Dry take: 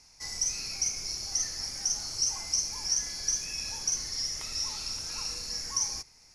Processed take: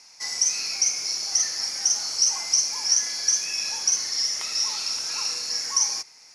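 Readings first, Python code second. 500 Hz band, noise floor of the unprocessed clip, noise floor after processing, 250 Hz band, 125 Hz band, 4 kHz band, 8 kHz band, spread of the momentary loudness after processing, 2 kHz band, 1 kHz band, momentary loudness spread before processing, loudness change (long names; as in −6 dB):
+4.5 dB, −58 dBFS, −50 dBFS, can't be measured, below −10 dB, +8.0 dB, +7.5 dB, 5 LU, +8.5 dB, +7.5 dB, 5 LU, +7.5 dB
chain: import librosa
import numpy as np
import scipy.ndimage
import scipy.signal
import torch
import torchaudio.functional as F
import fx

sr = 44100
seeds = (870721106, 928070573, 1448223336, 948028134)

y = fx.weighting(x, sr, curve='A')
y = y * 10.0 ** (7.5 / 20.0)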